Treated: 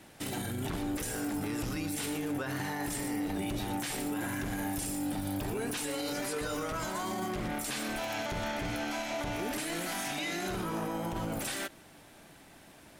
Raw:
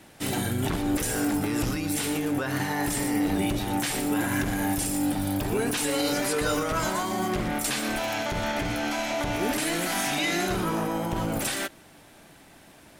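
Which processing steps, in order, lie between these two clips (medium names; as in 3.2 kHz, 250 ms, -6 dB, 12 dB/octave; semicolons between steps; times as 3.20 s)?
peak limiter -23.5 dBFS, peak gain reduction 8.5 dB; trim -3 dB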